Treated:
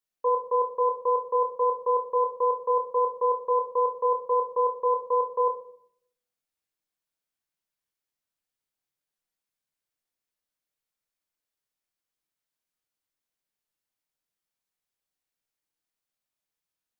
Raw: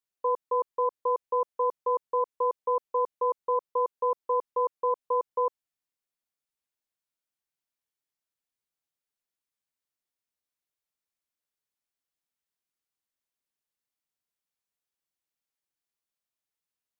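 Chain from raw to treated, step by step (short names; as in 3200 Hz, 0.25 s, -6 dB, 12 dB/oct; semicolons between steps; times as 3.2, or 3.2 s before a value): shoebox room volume 110 m³, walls mixed, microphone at 0.55 m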